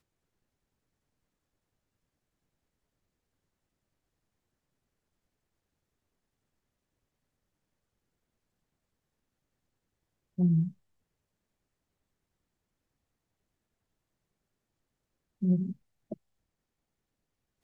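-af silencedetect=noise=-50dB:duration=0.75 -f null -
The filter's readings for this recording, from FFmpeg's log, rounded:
silence_start: 0.00
silence_end: 10.38 | silence_duration: 10.38
silence_start: 10.72
silence_end: 15.42 | silence_duration: 4.70
silence_start: 16.14
silence_end: 17.63 | silence_duration: 1.50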